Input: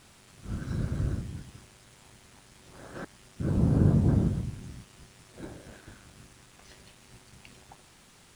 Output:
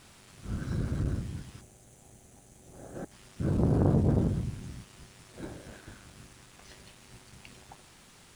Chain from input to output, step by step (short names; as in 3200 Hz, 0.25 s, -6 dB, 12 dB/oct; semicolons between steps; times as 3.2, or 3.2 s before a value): spectral gain 1.61–3.12, 850–5800 Hz -10 dB; core saturation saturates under 400 Hz; gain +1 dB